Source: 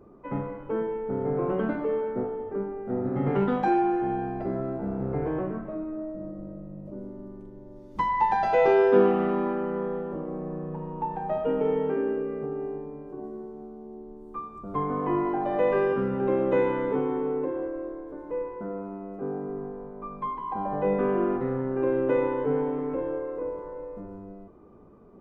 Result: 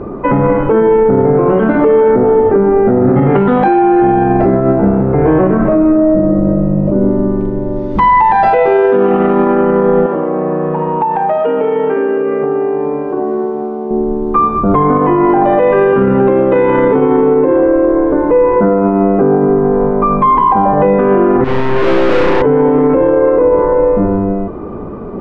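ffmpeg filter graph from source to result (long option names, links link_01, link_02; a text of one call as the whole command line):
ffmpeg -i in.wav -filter_complex "[0:a]asettb=1/sr,asplit=3[link_01][link_02][link_03];[link_01]atrim=end=10.064[link_04];[link_02]atrim=start=10.06:end=13.91,asetpts=PTS-STARTPTS,afade=type=in:duration=0.004:curve=qsin,afade=type=out:start_time=3.846:duration=0.004:curve=qsin,highpass=frequency=570:poles=1,acompressor=threshold=-39dB:ratio=6:attack=3.2:release=140:knee=1:detection=peak[link_05];[link_03]atrim=start=13.906[link_06];[link_04][link_05]acrossfade=duration=0.004:curve1=hsin:curve2=qsin[link_07];[link_07][link_06]acrossfade=duration=0.004:curve1=qsin:curve2=hsin,asettb=1/sr,asplit=3[link_08][link_09][link_10];[link_08]atrim=end=21.444[link_11];[link_09]atrim=start=21.44:end=22.42,asetpts=PTS-STARTPTS,afade=type=in:duration=0.004:curve=qsin,afade=type=out:start_time=0.976:duration=0.004:curve=qsin,equalizer=frequency=300:width_type=o:width=0.41:gain=7,aeval=exprs='(tanh(112*val(0)+0.6)-tanh(0.6))/112':channel_layout=same,asplit=2[link_12][link_13];[link_13]adelay=36,volume=-3.5dB[link_14];[link_12][link_14]amix=inputs=2:normalize=0,atrim=end_sample=43218[link_15];[link_10]atrim=start=22.416[link_16];[link_11][link_15]acrossfade=duration=0.004:curve1=hsin:curve2=qsin[link_17];[link_17][link_16]acrossfade=duration=0.004:curve1=qsin:curve2=hsin,lowpass=2900,acompressor=threshold=-29dB:ratio=6,alimiter=level_in=30dB:limit=-1dB:release=50:level=0:latency=1,volume=-1.5dB" out.wav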